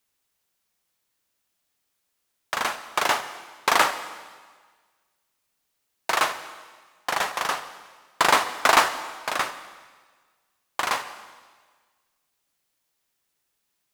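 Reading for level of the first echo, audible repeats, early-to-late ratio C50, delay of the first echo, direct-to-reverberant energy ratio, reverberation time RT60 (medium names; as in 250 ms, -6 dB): no echo, no echo, 11.0 dB, no echo, 10.5 dB, 1.5 s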